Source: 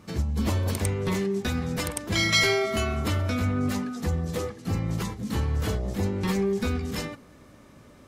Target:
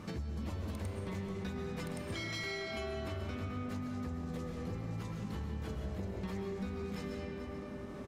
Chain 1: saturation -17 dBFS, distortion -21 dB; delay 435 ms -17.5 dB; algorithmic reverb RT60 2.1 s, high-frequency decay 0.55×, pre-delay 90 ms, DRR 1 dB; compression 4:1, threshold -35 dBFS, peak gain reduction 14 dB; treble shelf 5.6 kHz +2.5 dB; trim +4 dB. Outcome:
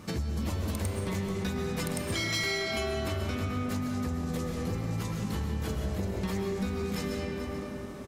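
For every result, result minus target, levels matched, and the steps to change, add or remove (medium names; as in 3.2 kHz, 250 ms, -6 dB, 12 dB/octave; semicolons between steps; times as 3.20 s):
compression: peak gain reduction -7.5 dB; 8 kHz band +6.5 dB
change: compression 4:1, threshold -45 dBFS, peak gain reduction 21.5 dB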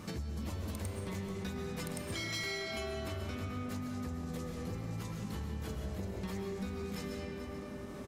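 8 kHz band +6.5 dB
change: treble shelf 5.6 kHz -8.5 dB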